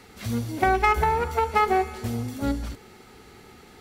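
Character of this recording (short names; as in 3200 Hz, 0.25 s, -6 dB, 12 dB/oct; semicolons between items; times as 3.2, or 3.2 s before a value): noise floor -50 dBFS; spectral tilt -4.5 dB/oct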